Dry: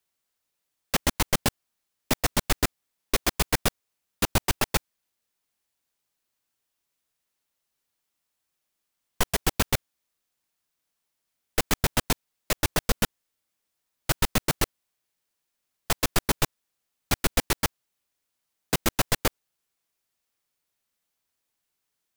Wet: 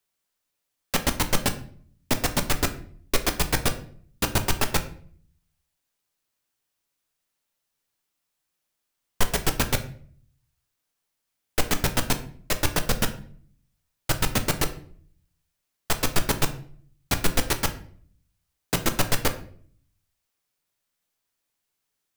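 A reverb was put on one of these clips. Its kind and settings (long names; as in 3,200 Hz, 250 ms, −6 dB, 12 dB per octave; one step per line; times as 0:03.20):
rectangular room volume 64 cubic metres, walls mixed, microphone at 0.31 metres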